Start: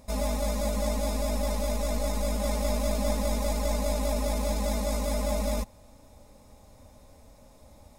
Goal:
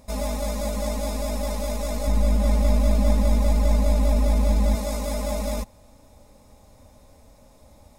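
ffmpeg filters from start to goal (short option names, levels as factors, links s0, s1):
-filter_complex "[0:a]asettb=1/sr,asplit=3[s0][s1][s2];[s0]atrim=end=2.074[s3];[s1]atrim=start=2.07:end=4.75,asetpts=PTS-STARTPTS,afade=t=in:d=0.004:c=qsin,afade=t=out:st=2.676:d=0.004:c=qsin,bass=f=250:g=9,treble=f=4000:g=-4[s4];[s2]atrim=start=4.746[s5];[s3][s4]acrossfade=d=0.004:c1=hsin:c2=qsin[s6];[s6][s5]acrossfade=d=0.004:c1=qsin:c2=hsin,volume=1.19"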